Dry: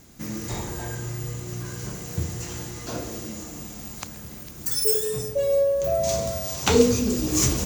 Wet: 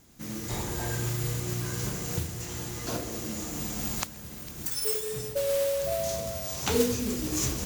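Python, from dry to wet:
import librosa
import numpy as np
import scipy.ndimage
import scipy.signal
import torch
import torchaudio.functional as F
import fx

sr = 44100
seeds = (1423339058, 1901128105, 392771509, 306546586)

y = fx.recorder_agc(x, sr, target_db=-13.5, rise_db_per_s=9.9, max_gain_db=30)
y = fx.mod_noise(y, sr, seeds[0], snr_db=10)
y = F.gain(torch.from_numpy(y), -8.0).numpy()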